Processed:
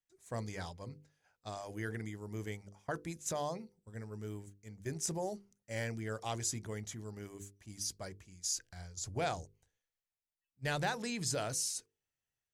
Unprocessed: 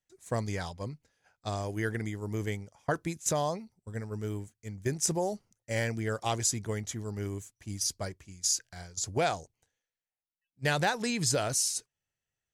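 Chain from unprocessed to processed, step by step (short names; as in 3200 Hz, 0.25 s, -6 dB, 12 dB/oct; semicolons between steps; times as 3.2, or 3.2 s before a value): 8.54–10.87 low shelf 92 Hz +12 dB; transient shaper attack -2 dB, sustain +3 dB; notches 50/100/150/200/250/300/350/400/450/500 Hz; gain -7 dB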